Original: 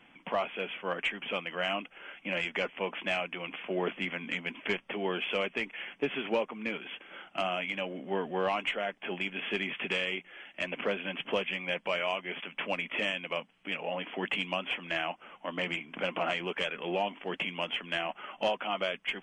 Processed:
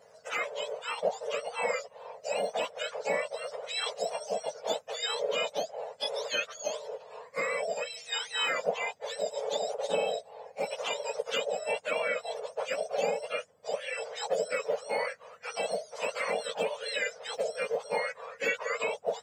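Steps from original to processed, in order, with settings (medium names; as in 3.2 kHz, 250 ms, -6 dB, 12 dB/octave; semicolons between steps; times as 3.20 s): spectrum inverted on a logarithmic axis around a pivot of 1.2 kHz; trim +2.5 dB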